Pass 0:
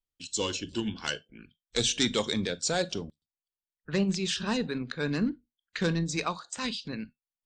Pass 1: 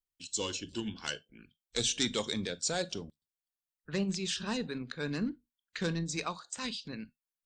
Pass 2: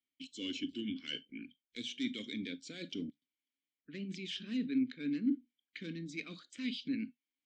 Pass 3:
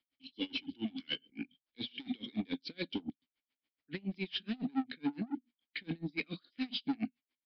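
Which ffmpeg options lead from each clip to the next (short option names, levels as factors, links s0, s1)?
-af "highshelf=f=6200:g=6,volume=0.531"
-filter_complex "[0:a]areverse,acompressor=threshold=0.00891:ratio=10,areverse,asplit=3[s0][s1][s2];[s0]bandpass=f=270:t=q:w=8,volume=1[s3];[s1]bandpass=f=2290:t=q:w=8,volume=0.501[s4];[s2]bandpass=f=3010:t=q:w=8,volume=0.355[s5];[s3][s4][s5]amix=inputs=3:normalize=0,volume=6.68"
-af "asoftclip=type=tanh:threshold=0.0133,aresample=11025,aresample=44100,aeval=exprs='val(0)*pow(10,-30*(0.5-0.5*cos(2*PI*7.1*n/s))/20)':c=same,volume=3.55"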